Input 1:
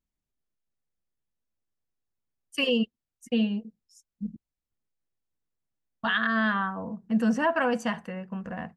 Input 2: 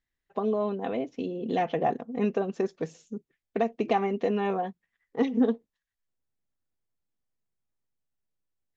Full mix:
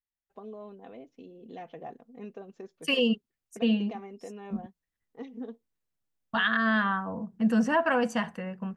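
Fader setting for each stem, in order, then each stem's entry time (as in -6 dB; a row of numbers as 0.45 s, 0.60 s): 0.0 dB, -16.0 dB; 0.30 s, 0.00 s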